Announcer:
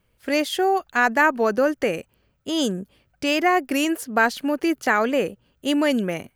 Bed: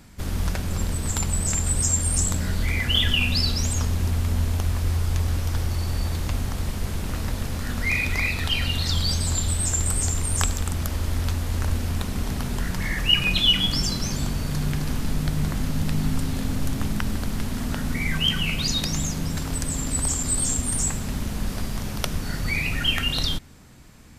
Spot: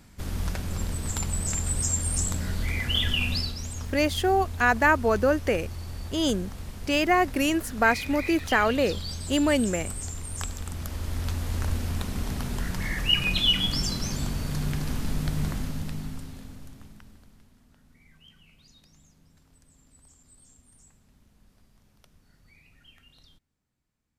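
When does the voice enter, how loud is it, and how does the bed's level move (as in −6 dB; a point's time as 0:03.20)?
3.65 s, −2.5 dB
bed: 0:03.34 −4.5 dB
0:03.55 −11 dB
0:10.34 −11 dB
0:11.46 −3.5 dB
0:15.48 −3.5 dB
0:17.64 −33 dB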